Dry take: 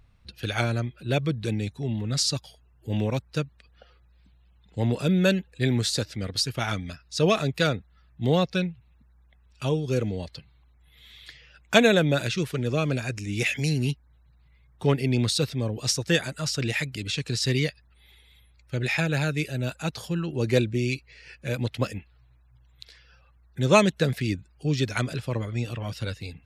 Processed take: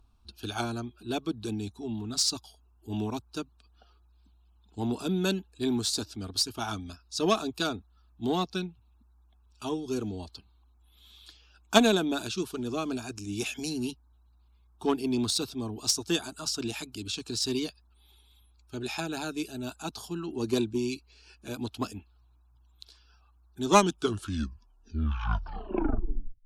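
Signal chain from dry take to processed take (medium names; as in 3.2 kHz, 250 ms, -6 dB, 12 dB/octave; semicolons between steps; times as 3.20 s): tape stop on the ending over 2.79 s; static phaser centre 530 Hz, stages 6; Chebyshev shaper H 7 -25 dB, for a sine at -6 dBFS; trim +3.5 dB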